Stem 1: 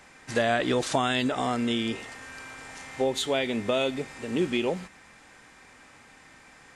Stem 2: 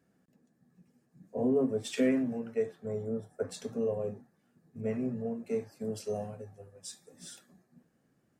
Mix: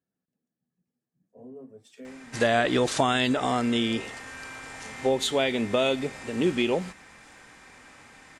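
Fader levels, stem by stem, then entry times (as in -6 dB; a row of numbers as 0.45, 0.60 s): +2.0, -17.0 dB; 2.05, 0.00 s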